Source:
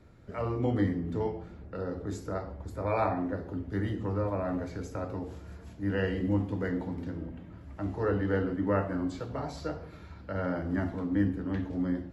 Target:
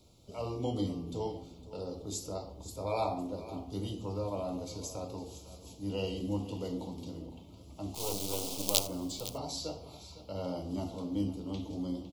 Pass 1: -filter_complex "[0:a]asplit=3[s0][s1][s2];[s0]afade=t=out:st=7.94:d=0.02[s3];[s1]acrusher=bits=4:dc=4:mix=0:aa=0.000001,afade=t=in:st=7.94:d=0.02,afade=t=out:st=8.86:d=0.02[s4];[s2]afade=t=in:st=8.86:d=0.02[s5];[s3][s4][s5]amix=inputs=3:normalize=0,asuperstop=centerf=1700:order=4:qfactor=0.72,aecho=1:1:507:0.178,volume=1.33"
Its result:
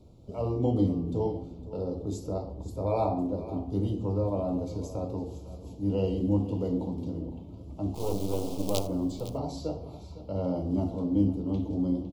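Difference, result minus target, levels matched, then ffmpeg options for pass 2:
1 kHz band -3.0 dB
-filter_complex "[0:a]asplit=3[s0][s1][s2];[s0]afade=t=out:st=7.94:d=0.02[s3];[s1]acrusher=bits=4:dc=4:mix=0:aa=0.000001,afade=t=in:st=7.94:d=0.02,afade=t=out:st=8.86:d=0.02[s4];[s2]afade=t=in:st=8.86:d=0.02[s5];[s3][s4][s5]amix=inputs=3:normalize=0,asuperstop=centerf=1700:order=4:qfactor=0.72,tiltshelf=f=1200:g=-9.5,aecho=1:1:507:0.178,volume=1.33"

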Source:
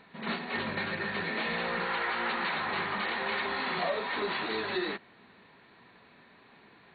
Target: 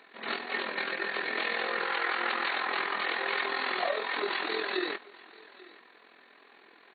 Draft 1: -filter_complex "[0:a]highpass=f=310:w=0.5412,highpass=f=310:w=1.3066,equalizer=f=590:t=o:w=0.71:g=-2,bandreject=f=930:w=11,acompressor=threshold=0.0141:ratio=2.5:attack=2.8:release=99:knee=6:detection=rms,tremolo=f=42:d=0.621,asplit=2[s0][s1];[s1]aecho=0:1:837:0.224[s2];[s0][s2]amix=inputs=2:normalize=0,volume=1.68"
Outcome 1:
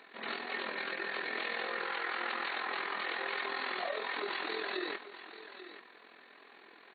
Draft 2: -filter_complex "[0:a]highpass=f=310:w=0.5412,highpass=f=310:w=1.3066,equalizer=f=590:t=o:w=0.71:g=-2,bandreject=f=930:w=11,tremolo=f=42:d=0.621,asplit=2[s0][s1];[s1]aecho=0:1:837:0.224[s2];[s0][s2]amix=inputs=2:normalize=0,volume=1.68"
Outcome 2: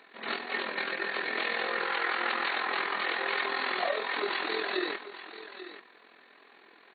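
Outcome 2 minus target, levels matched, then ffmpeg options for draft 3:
echo-to-direct +8.5 dB
-filter_complex "[0:a]highpass=f=310:w=0.5412,highpass=f=310:w=1.3066,equalizer=f=590:t=o:w=0.71:g=-2,bandreject=f=930:w=11,tremolo=f=42:d=0.621,asplit=2[s0][s1];[s1]aecho=0:1:837:0.0841[s2];[s0][s2]amix=inputs=2:normalize=0,volume=1.68"

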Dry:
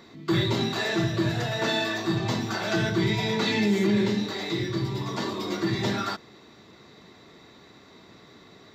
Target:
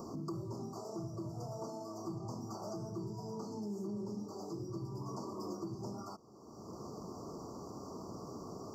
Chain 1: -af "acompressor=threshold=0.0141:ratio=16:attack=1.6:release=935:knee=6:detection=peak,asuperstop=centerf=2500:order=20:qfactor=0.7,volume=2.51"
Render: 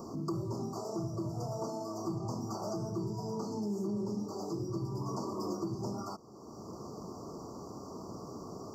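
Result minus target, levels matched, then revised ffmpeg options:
compression: peak gain reduction -5.5 dB
-af "acompressor=threshold=0.00708:ratio=16:attack=1.6:release=935:knee=6:detection=peak,asuperstop=centerf=2500:order=20:qfactor=0.7,volume=2.51"

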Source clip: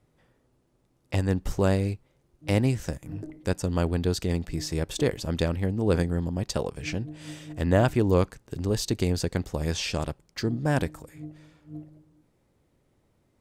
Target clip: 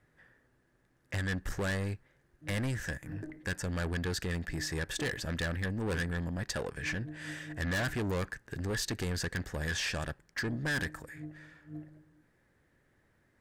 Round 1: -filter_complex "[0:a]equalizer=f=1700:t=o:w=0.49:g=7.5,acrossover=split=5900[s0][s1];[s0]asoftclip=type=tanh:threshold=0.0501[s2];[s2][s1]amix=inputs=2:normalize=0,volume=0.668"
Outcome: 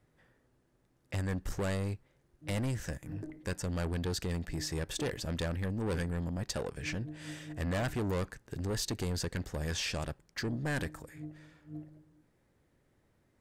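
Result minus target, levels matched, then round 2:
2 kHz band -5.5 dB
-filter_complex "[0:a]equalizer=f=1700:t=o:w=0.49:g=18.5,acrossover=split=5900[s0][s1];[s0]asoftclip=type=tanh:threshold=0.0501[s2];[s2][s1]amix=inputs=2:normalize=0,volume=0.668"

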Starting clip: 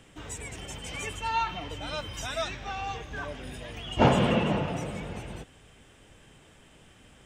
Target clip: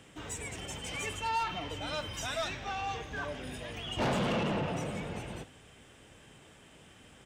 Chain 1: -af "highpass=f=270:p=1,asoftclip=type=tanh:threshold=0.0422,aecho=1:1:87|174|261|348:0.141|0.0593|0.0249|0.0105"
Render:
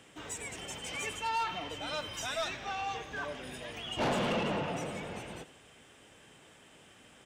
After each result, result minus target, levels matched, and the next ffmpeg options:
echo 36 ms late; 125 Hz band -4.5 dB
-af "highpass=f=270:p=1,asoftclip=type=tanh:threshold=0.0422,aecho=1:1:51|102|153|204:0.141|0.0593|0.0249|0.0105"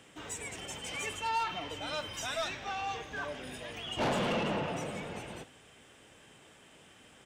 125 Hz band -4.0 dB
-af "highpass=f=80:p=1,asoftclip=type=tanh:threshold=0.0422,aecho=1:1:51|102|153|204:0.141|0.0593|0.0249|0.0105"

